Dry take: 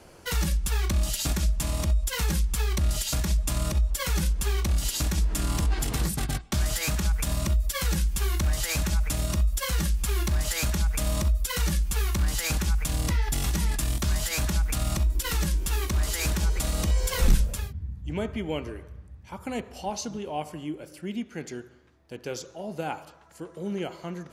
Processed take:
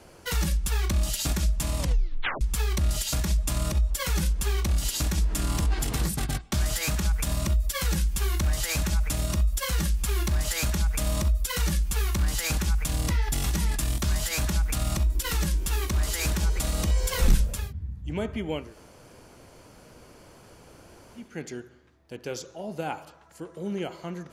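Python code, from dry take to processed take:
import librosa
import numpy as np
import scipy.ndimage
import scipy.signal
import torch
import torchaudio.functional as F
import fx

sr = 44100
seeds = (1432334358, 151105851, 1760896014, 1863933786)

y = fx.edit(x, sr, fx.tape_stop(start_s=1.78, length_s=0.63),
    fx.room_tone_fill(start_s=18.65, length_s=2.6, crossfade_s=0.24), tone=tone)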